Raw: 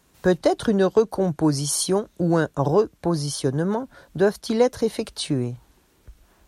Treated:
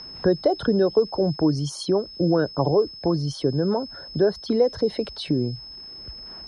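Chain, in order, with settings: formant sharpening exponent 1.5; bit-crush 10-bit; whine 5200 Hz -34 dBFS; air absorption 110 m; three-band squash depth 40%

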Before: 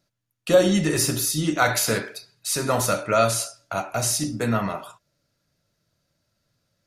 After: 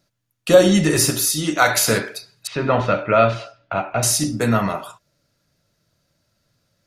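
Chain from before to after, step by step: 1.1–1.77 low shelf 260 Hz -8.5 dB; 2.47–4.03 Chebyshev low-pass 3000 Hz, order 3; gain +5 dB

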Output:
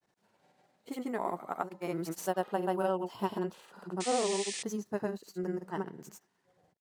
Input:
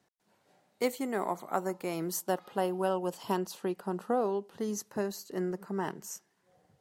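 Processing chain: median filter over 3 samples; dynamic EQ 6000 Hz, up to -5 dB, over -56 dBFS, Q 0.93; grains, pitch spread up and down by 0 st; painted sound noise, 4–4.63, 1700–9500 Hz -39 dBFS

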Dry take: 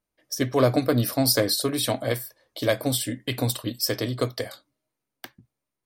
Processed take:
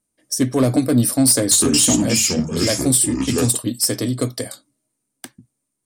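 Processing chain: bell 9000 Hz +11.5 dB 0.79 oct; 1.29–3.58 echoes that change speed 0.223 s, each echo -5 st, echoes 2; soft clip -13.5 dBFS, distortion -14 dB; ten-band EQ 125 Hz +4 dB, 250 Hz +10 dB, 8000 Hz +7 dB

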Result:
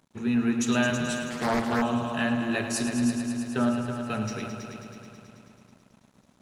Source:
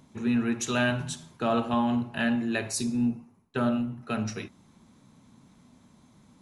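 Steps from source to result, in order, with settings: multi-head echo 0.108 s, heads all three, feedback 65%, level -11.5 dB; crossover distortion -55.5 dBFS; 1.3–1.82 Doppler distortion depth 0.71 ms

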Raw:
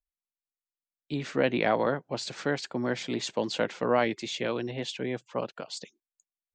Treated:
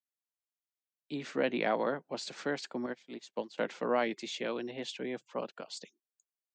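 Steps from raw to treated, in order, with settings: HPF 170 Hz 24 dB/oct; 2.86–3.58 upward expander 2.5:1, over -45 dBFS; gain -5 dB

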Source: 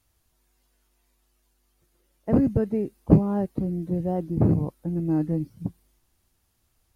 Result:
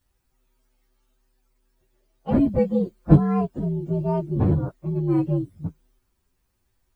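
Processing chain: inharmonic rescaling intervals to 121%; 2.57–3.16 comb 5.8 ms, depth 55%; gain +3.5 dB

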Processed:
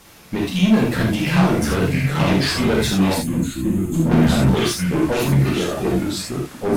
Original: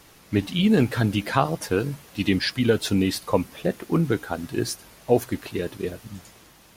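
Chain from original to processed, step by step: echoes that change speed 0.569 s, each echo -3 st, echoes 2; 3.95–4.53 low shelf 480 Hz +11.5 dB; tube stage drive 21 dB, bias 0.4; 3.14–4.06 spectral gain 360–6200 Hz -15 dB; non-linear reverb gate 0.11 s flat, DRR -2 dB; gain +4 dB

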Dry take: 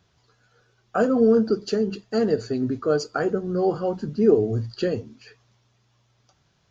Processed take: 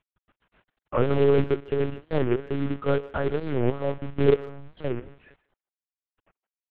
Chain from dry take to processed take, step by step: LPF 2200 Hz 12 dB/oct; companded quantiser 4-bit; 4.34–4.87 tube stage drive 36 dB, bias 0.65; careless resampling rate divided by 6×, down filtered, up hold; monotone LPC vocoder at 8 kHz 140 Hz; speakerphone echo 0.15 s, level -21 dB; record warp 45 rpm, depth 250 cents; gain -2 dB

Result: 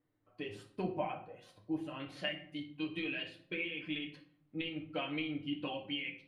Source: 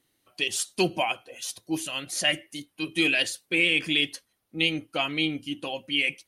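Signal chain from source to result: bell 3100 Hz -9.5 dB 1.3 oct, from 2 s +4.5 dB; compressor 12:1, threshold -26 dBFS, peak gain reduction 12.5 dB; air absorption 470 m; reverb RT60 0.55 s, pre-delay 7 ms, DRR 0 dB; gain -6.5 dB

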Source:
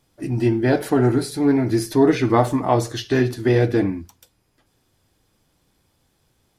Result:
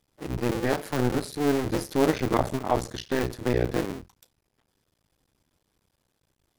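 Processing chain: cycle switcher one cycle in 2, muted; gain -5 dB

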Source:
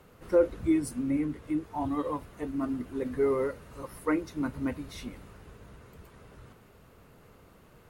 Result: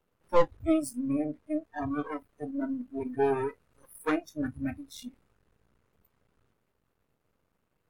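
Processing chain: half-wave rectifier; spectral noise reduction 22 dB; gain +5.5 dB

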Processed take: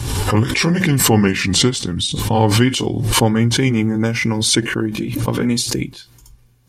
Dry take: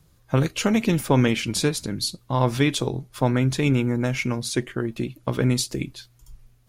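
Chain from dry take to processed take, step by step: gliding pitch shift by -4 st ending unshifted; notch comb 650 Hz; backwards sustainer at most 33 dB/s; gain +6.5 dB

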